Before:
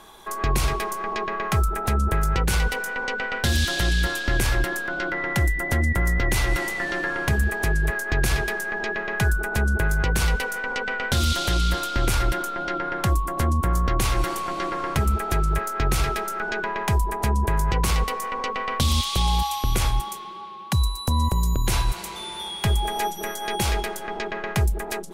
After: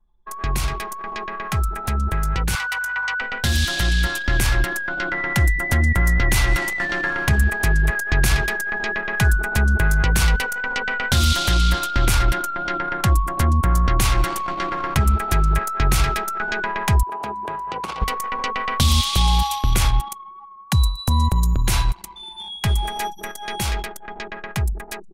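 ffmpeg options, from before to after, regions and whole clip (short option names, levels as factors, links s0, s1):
-filter_complex "[0:a]asettb=1/sr,asplit=3[s0][s1][s2];[s0]atrim=end=2.554[s3];[s1]atrim=start=2.55:end=3.21,asetpts=PTS-STARTPTS,afade=t=in:d=0.004:c=qsin,afade=t=out:st=0.656:d=0.004:c=qsin,highpass=f=1100:t=q:w=2,aeval=exprs='val(0)+0.00282*(sin(2*PI*50*n/s)+sin(2*PI*2*50*n/s)/2+sin(2*PI*3*50*n/s)/3+sin(2*PI*4*50*n/s)/4+sin(2*PI*5*50*n/s)/5)':c=same[s4];[s2]atrim=start=3.206[s5];[s3][s4]acrossfade=d=0.004:c1=hsin:c2=qsin[s6];[s6][s5]acrossfade=d=0.004:c1=qsin:c2=hsin,asettb=1/sr,asplit=3[s7][s8][s9];[s7]atrim=end=17.034[s10];[s8]atrim=start=17.03:end=18.02,asetpts=PTS-STARTPTS,afade=t=in:d=0.004:c=qsin,afade=t=out:st=0.986:d=0.004:c=qsin,acrossover=split=3000[s11][s12];[s12]acompressor=threshold=0.0112:ratio=4:attack=1:release=60[s13];[s11][s13]amix=inputs=2:normalize=0,highpass=360,equalizer=f=1900:w=2.1:g=-9[s14];[s9]atrim=start=18.016[s15];[s10][s14]acrossfade=d=0.004:c1=hsin:c2=qsin[s16];[s16][s15]acrossfade=d=0.004:c1=qsin:c2=hsin,anlmdn=39.8,equalizer=f=450:t=o:w=1.3:g=-6.5,dynaudnorm=f=850:g=9:m=1.78"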